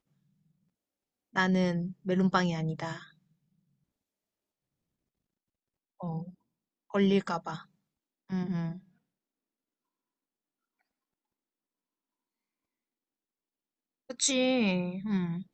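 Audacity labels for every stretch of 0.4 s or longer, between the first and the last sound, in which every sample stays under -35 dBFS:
2.970000	6.010000	silence
6.220000	6.940000	silence
7.560000	8.300000	silence
8.720000	14.100000	silence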